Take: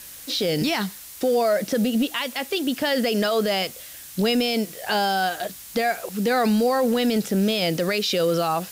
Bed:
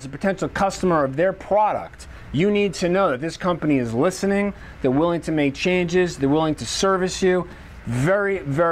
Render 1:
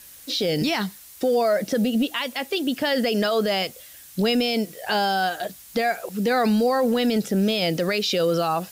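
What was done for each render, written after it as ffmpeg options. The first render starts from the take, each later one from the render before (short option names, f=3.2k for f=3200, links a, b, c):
-af "afftdn=nr=6:nf=-41"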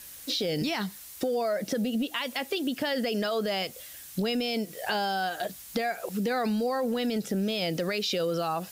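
-af "acompressor=threshold=-28dB:ratio=3"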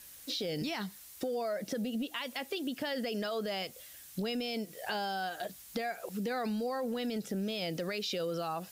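-af "volume=-6.5dB"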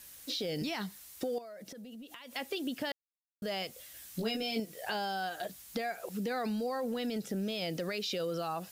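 -filter_complex "[0:a]asettb=1/sr,asplit=3[a][b][c];[a]atrim=end=1.384[d];[b]atrim=start=1.38:end=2.36,asetpts=PTS-STARTPTS,afade=t=in:d=0.004:c=qsin,afade=t=out:st=0.976:d=0.004:c=qsin,acompressor=threshold=-44dB:ratio=16:attack=3.2:release=140:knee=1:detection=peak[e];[c]atrim=start=2.356[f];[d][e]acrossfade=d=0.004:c1=hsin:c2=qsin[g];[g][f]acrossfade=d=0.004:c1=qsin:c2=hsin,asettb=1/sr,asplit=3[h][i][j];[h]atrim=end=3.934[k];[i]atrim=start=3.93:end=4.6,asetpts=PTS-STARTPTS,afade=t=in:d=0.004:c=qsin,afade=t=out:st=0.666:d=0.004:c=qsin,asplit=2[l][m];[m]adelay=18,volume=-3dB[n];[l][n]amix=inputs=2:normalize=0,atrim=end_sample=29547[o];[j]atrim=start=4.596[p];[k][o]acrossfade=d=0.004:c1=hsin:c2=qsin[q];[q][p]acrossfade=d=0.004:c1=qsin:c2=hsin,asplit=3[r][s][t];[r]atrim=end=2.92,asetpts=PTS-STARTPTS,afade=t=out:st=2.916:d=0.004:c=hsin[u];[s]atrim=start=2.92:end=3.42,asetpts=PTS-STARTPTS,volume=0[v];[t]atrim=start=3.42,asetpts=PTS-STARTPTS,afade=t=in:d=0.004:c=hsin[w];[u][v][w]concat=n=3:v=0:a=1"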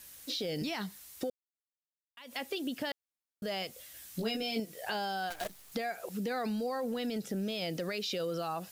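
-filter_complex "[0:a]asettb=1/sr,asplit=3[a][b][c];[a]atrim=end=5.304[d];[b]atrim=start=5.3:end=5.72,asetpts=PTS-STARTPTS,afade=t=in:d=0.004:c=qsin,afade=t=out:st=0.416:d=0.004:c=qsin,acrusher=bits=7:dc=4:mix=0:aa=0.000001[e];[c]atrim=start=5.716[f];[d][e]acrossfade=d=0.004:c1=hsin:c2=qsin[g];[g][f]acrossfade=d=0.004:c1=qsin:c2=hsin,asplit=3[h][i][j];[h]atrim=end=1.3,asetpts=PTS-STARTPTS,afade=t=out:st=1.296:d=0.004:c=hsin[k];[i]atrim=start=1.3:end=2.17,asetpts=PTS-STARTPTS,volume=0[l];[j]atrim=start=2.17,asetpts=PTS-STARTPTS,afade=t=in:d=0.004:c=hsin[m];[k][l][m]concat=n=3:v=0:a=1"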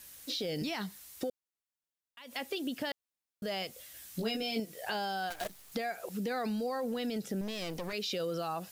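-filter_complex "[0:a]asettb=1/sr,asplit=3[a][b][c];[a]atrim=end=7.414[d];[b]atrim=start=7.41:end=7.93,asetpts=PTS-STARTPTS,afade=t=in:d=0.004:c=qsin,afade=t=out:st=0.516:d=0.004:c=qsin,aeval=exprs='clip(val(0),-1,0.00708)':c=same[e];[c]atrim=start=7.926[f];[d][e]acrossfade=d=0.004:c1=hsin:c2=qsin[g];[g][f]acrossfade=d=0.004:c1=qsin:c2=hsin"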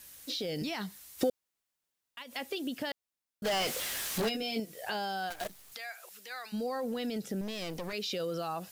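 -filter_complex "[0:a]asplit=3[a][b][c];[a]afade=t=out:st=1.18:d=0.02[d];[b]acontrast=86,afade=t=in:st=1.18:d=0.02,afade=t=out:st=2.22:d=0.02[e];[c]afade=t=in:st=2.22:d=0.02[f];[d][e][f]amix=inputs=3:normalize=0,asplit=3[g][h][i];[g]afade=t=out:st=3.44:d=0.02[j];[h]asplit=2[k][l];[l]highpass=f=720:p=1,volume=36dB,asoftclip=type=tanh:threshold=-24dB[m];[k][m]amix=inputs=2:normalize=0,lowpass=f=4.8k:p=1,volume=-6dB,afade=t=in:st=3.44:d=0.02,afade=t=out:st=4.28:d=0.02[n];[i]afade=t=in:st=4.28:d=0.02[o];[j][n][o]amix=inputs=3:normalize=0,asplit=3[p][q][r];[p]afade=t=out:st=5.73:d=0.02[s];[q]highpass=1.3k,afade=t=in:st=5.73:d=0.02,afade=t=out:st=6.52:d=0.02[t];[r]afade=t=in:st=6.52:d=0.02[u];[s][t][u]amix=inputs=3:normalize=0"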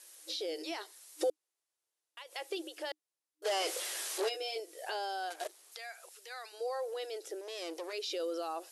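-af "afftfilt=real='re*between(b*sr/4096,310,12000)':imag='im*between(b*sr/4096,310,12000)':win_size=4096:overlap=0.75,equalizer=f=2k:w=0.54:g=-4.5"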